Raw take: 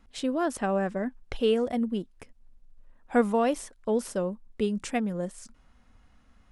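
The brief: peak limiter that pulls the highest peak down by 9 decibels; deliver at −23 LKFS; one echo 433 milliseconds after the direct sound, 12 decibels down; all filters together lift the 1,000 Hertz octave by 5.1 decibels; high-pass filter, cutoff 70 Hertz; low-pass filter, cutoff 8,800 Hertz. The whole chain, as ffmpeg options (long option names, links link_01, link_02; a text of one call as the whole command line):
ffmpeg -i in.wav -af "highpass=70,lowpass=8800,equalizer=frequency=1000:width_type=o:gain=7.5,alimiter=limit=-19dB:level=0:latency=1,aecho=1:1:433:0.251,volume=7dB" out.wav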